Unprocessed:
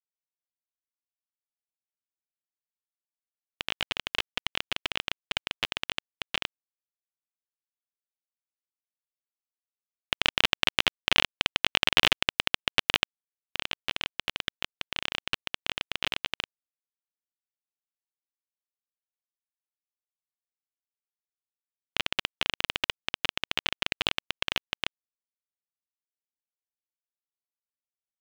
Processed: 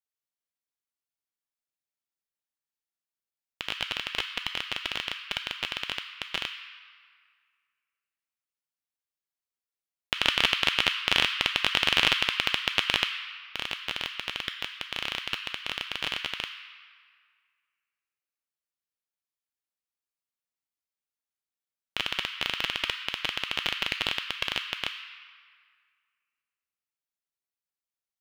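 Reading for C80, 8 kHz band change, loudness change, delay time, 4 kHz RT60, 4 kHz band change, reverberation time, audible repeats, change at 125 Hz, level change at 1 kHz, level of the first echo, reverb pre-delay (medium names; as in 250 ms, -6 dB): 7.5 dB, 0.0 dB, +0.5 dB, no echo, 1.4 s, +0.5 dB, 2.0 s, no echo, -1.0 dB, 0.0 dB, no echo, 3 ms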